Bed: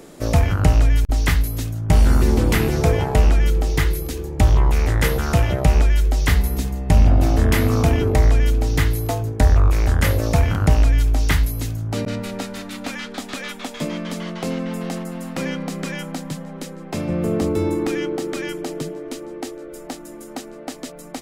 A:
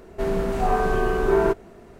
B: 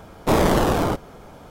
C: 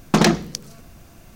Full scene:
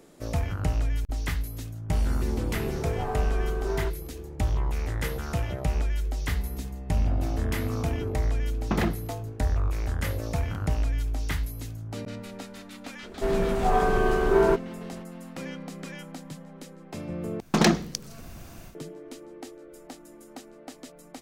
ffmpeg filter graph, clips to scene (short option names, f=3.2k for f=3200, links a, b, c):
-filter_complex "[1:a]asplit=2[a][b];[3:a]asplit=2[c][d];[0:a]volume=-11.5dB[e];[c]lowpass=2.5k[f];[d]dynaudnorm=f=140:g=3:m=11dB[g];[e]asplit=2[h][i];[h]atrim=end=17.404[j];[g]atrim=end=1.35,asetpts=PTS-STARTPTS,volume=-8.5dB[k];[i]atrim=start=18.746[l];[a]atrim=end=1.99,asetpts=PTS-STARTPTS,volume=-12dB,afade=t=in:d=0.004:c=hsin,afade=t=out:st=1.986:d=0.004:c=hsin,adelay=2370[m];[f]atrim=end=1.35,asetpts=PTS-STARTPTS,volume=-11dB,afade=t=in:d=0.004:c=hsin,afade=t=out:st=1.346:d=0.004:c=hsin,adelay=8570[n];[b]atrim=end=1.99,asetpts=PTS-STARTPTS,volume=-1dB,afade=t=in:d=0.004:c=hsin,afade=t=out:st=1.986:d=0.004:c=hsin,adelay=13030[o];[j][k]acrossfade=d=0.004:c1=hsin:c2=hsin[p];[p][l]acrossfade=d=0.004:c1=hsin:c2=hsin[q];[q][m][n][o]amix=inputs=4:normalize=0"